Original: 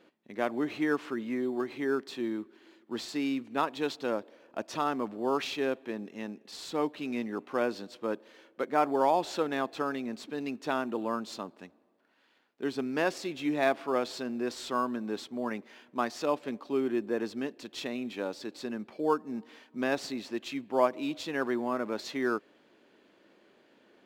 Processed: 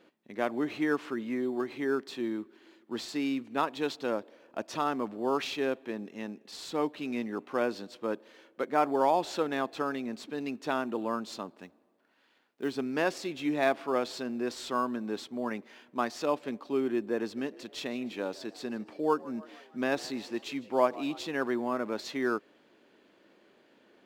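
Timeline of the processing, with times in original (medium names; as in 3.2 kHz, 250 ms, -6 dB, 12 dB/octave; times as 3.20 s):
11.61–12.78 s: short-mantissa float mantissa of 4-bit
17.19–21.27 s: frequency-shifting echo 155 ms, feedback 53%, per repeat +82 Hz, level -20 dB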